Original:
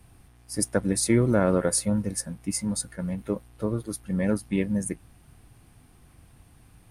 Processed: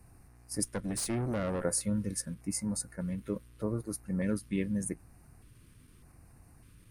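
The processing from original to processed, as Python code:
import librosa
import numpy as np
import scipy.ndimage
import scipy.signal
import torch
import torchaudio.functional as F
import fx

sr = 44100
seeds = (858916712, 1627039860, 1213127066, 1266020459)

p1 = fx.filter_lfo_notch(x, sr, shape='square', hz=0.83, low_hz=770.0, high_hz=3300.0, q=1.2)
p2 = fx.tube_stage(p1, sr, drive_db=22.0, bias=0.5, at=(0.63, 1.63), fade=0.02)
p3 = fx.level_steps(p2, sr, step_db=19)
p4 = p2 + F.gain(torch.from_numpy(p3), 0.0).numpy()
y = F.gain(torch.from_numpy(p4), -7.5).numpy()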